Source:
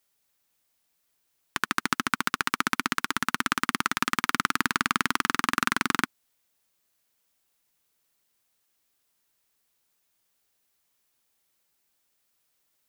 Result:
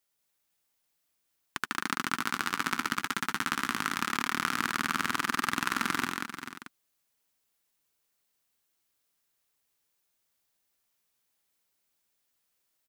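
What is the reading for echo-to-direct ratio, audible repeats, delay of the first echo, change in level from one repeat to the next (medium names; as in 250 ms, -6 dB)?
-1.5 dB, 5, 76 ms, no regular repeats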